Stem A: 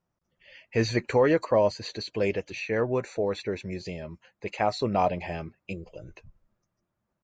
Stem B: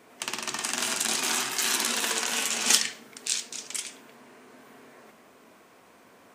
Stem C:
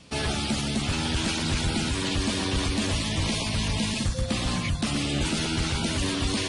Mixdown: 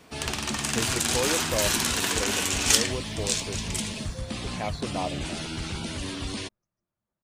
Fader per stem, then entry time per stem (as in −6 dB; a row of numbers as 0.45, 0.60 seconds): −7.5, +0.5, −6.5 decibels; 0.00, 0.00, 0.00 seconds